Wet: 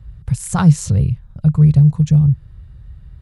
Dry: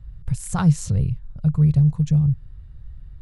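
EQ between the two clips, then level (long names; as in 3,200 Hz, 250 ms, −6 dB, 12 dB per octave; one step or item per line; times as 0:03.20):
high-pass filter 50 Hz
+6.0 dB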